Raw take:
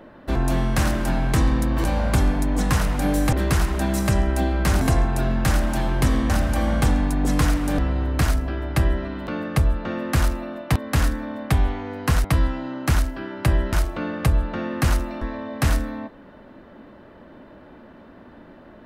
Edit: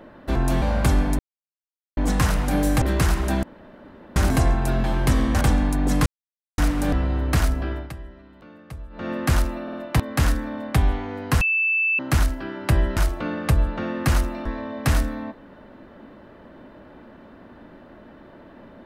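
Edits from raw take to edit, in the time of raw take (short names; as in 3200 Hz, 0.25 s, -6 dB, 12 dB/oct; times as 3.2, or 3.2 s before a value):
0.62–1.91 cut
2.48 insert silence 0.78 s
3.94–4.67 room tone
5.35–5.79 cut
6.36–6.79 cut
7.44 insert silence 0.52 s
8.58–9.97 dip -18 dB, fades 0.21 s
10.49 stutter 0.05 s, 3 plays
12.17–12.75 bleep 2640 Hz -18 dBFS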